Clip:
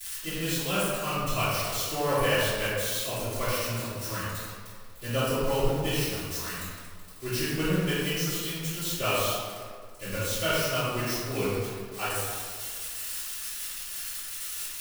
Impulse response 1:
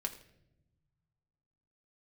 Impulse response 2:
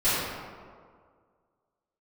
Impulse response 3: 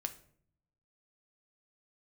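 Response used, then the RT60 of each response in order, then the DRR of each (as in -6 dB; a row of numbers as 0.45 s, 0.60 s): 2; no single decay rate, 1.9 s, 0.60 s; 2.5 dB, -18.5 dB, 7.0 dB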